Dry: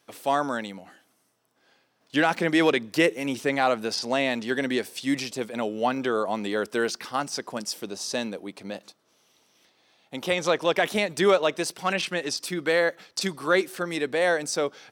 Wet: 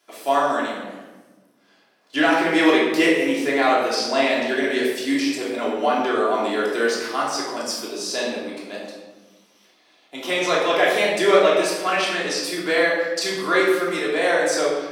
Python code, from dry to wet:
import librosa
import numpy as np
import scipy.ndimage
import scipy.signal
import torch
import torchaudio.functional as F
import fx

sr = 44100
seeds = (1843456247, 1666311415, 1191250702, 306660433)

y = scipy.signal.sosfilt(scipy.signal.butter(2, 330.0, 'highpass', fs=sr, output='sos'), x)
y = fx.room_shoebox(y, sr, seeds[0], volume_m3=750.0, walls='mixed', distance_m=3.1)
y = y * 10.0 ** (-1.0 / 20.0)